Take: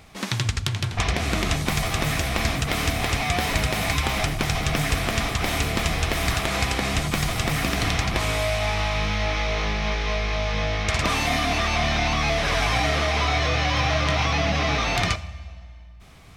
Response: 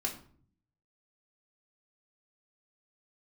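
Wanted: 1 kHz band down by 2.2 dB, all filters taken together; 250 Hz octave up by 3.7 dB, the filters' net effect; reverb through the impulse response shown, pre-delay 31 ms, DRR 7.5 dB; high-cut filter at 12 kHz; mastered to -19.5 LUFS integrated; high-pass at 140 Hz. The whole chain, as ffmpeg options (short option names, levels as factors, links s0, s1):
-filter_complex "[0:a]highpass=140,lowpass=12000,equalizer=f=250:t=o:g=6,equalizer=f=1000:t=o:g=-3.5,asplit=2[s0][s1];[1:a]atrim=start_sample=2205,adelay=31[s2];[s1][s2]afir=irnorm=-1:irlink=0,volume=0.299[s3];[s0][s3]amix=inputs=2:normalize=0,volume=1.58"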